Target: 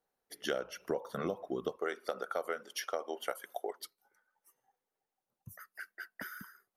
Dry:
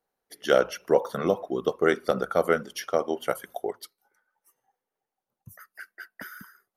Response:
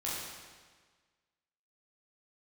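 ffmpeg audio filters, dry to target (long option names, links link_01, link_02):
-filter_complex "[0:a]asettb=1/sr,asplit=3[link_01][link_02][link_03];[link_01]atrim=end=1.774[link_04];[link_02]atrim=start=1.77:end=3.8,asetpts=PTS-STARTPTS,afade=type=in:duration=0.004:curve=qsin,afade=type=out:start_time=2.026:duration=0.004:curve=qsin,highpass=450[link_05];[link_03]atrim=start=3.796[link_06];[link_04][link_05]acrossfade=duration=0.004:curve1=hsin:curve2=qsin[link_07];[link_07][link_06]acrossfade=duration=0.004:curve1=qsin:curve2=hsin,acompressor=threshold=-29dB:ratio=6,volume=-3dB"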